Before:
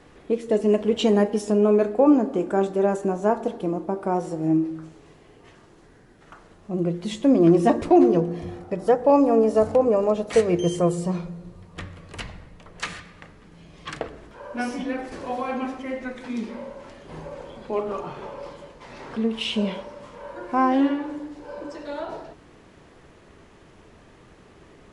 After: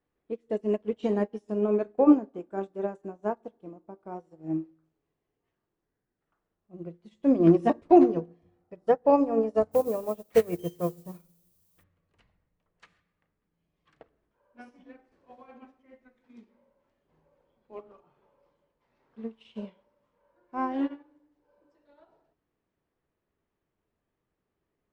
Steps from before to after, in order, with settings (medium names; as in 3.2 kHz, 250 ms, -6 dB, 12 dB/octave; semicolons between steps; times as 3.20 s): low-pass 3.3 kHz 6 dB/octave; 9.71–11.82 s: added noise violet -38 dBFS; upward expansion 2.5:1, over -33 dBFS